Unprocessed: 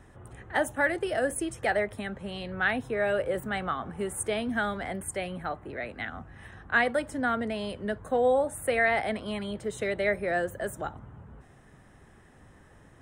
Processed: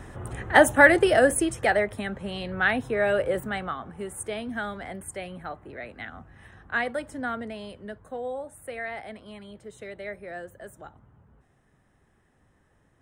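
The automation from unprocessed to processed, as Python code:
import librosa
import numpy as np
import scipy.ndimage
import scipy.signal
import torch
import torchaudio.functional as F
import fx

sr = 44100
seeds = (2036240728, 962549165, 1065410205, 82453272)

y = fx.gain(x, sr, db=fx.line((0.98, 11.0), (1.81, 3.5), (3.31, 3.5), (3.85, -3.0), (7.27, -3.0), (8.3, -10.0)))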